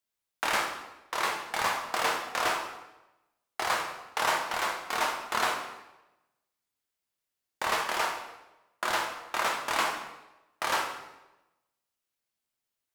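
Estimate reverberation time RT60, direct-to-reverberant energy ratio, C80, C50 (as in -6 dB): 1.0 s, 1.0 dB, 8.0 dB, 5.0 dB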